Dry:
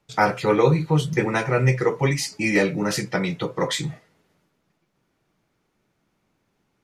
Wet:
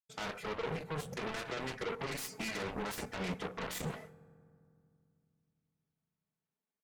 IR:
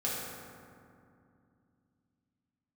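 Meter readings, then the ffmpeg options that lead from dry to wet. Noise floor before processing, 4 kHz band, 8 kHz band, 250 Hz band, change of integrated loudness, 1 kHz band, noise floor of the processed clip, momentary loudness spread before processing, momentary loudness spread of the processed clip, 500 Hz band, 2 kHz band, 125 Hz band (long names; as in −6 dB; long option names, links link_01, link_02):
−72 dBFS, −13.0 dB, −13.5 dB, −18.5 dB, −17.5 dB, −16.5 dB, below −85 dBFS, 7 LU, 2 LU, −18.0 dB, −15.5 dB, −22.0 dB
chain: -filter_complex "[0:a]agate=range=-33dB:threshold=-43dB:ratio=3:detection=peak,highpass=frequency=260:poles=1,equalizer=frequency=4300:width=0.82:gain=-11.5,aecho=1:1:4.6:0.77,areverse,acompressor=threshold=-34dB:ratio=6,areverse,alimiter=level_in=9dB:limit=-24dB:level=0:latency=1:release=125,volume=-9dB,aeval=exprs='0.0237*(cos(1*acos(clip(val(0)/0.0237,-1,1)))-cos(1*PI/2))+0.00596*(cos(3*acos(clip(val(0)/0.0237,-1,1)))-cos(3*PI/2))+0.00531*(cos(7*acos(clip(val(0)/0.0237,-1,1)))-cos(7*PI/2))':channel_layout=same,asplit=2[link_01][link_02];[1:a]atrim=start_sample=2205,lowshelf=frequency=180:gain=7.5[link_03];[link_02][link_03]afir=irnorm=-1:irlink=0,volume=-25dB[link_04];[link_01][link_04]amix=inputs=2:normalize=0,volume=4dB" -ar 48000 -c:a libopus -b:a 256k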